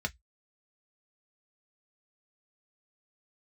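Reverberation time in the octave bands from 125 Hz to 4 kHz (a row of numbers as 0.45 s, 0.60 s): 0.15 s, 0.10 s, 0.05 s, 0.10 s, 0.15 s, 0.15 s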